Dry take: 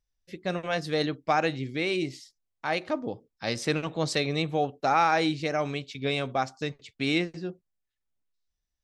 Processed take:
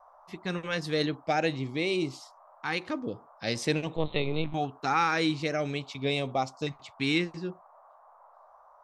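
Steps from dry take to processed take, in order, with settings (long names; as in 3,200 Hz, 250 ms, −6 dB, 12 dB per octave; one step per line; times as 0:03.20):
0:03.96–0:04.54: linear-prediction vocoder at 8 kHz pitch kept
auto-filter notch saw up 0.45 Hz 460–1,900 Hz
noise in a band 590–1,200 Hz −56 dBFS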